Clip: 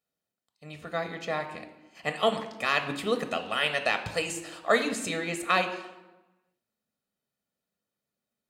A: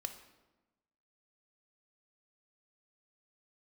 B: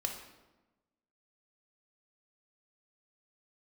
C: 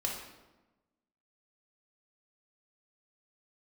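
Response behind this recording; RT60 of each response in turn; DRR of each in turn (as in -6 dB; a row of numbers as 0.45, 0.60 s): A; 1.1, 1.1, 1.1 s; 7.0, 2.5, -2.0 dB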